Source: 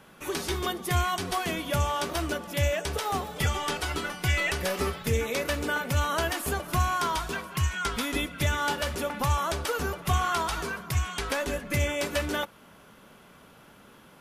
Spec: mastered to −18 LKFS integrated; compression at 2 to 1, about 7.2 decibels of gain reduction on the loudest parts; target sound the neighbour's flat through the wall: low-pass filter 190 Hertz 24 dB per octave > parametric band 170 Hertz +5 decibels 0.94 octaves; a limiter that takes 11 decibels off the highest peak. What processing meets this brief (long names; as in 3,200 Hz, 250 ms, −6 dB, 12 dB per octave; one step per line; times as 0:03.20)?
downward compressor 2 to 1, threshold −34 dBFS
brickwall limiter −29.5 dBFS
low-pass filter 190 Hz 24 dB per octave
parametric band 170 Hz +5 dB 0.94 octaves
level +27 dB